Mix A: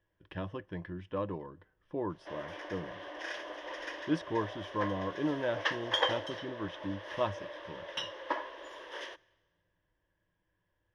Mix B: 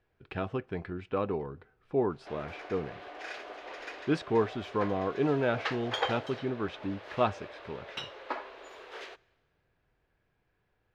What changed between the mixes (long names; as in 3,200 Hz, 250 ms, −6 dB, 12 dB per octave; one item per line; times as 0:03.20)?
speech +6.0 dB
master: remove EQ curve with evenly spaced ripples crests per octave 1.2, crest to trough 11 dB